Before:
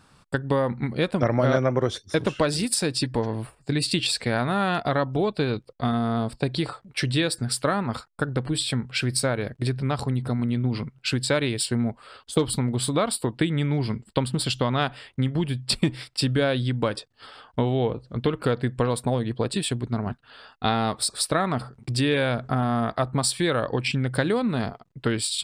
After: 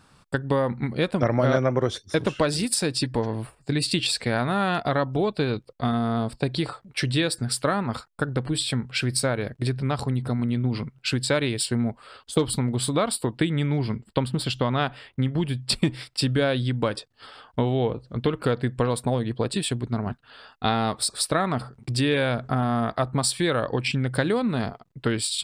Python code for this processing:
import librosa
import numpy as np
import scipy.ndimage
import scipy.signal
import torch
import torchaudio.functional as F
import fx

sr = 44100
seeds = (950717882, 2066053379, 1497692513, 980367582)

y = fx.peak_eq(x, sr, hz=8300.0, db=-6.0, octaves=1.6, at=(13.81, 15.38))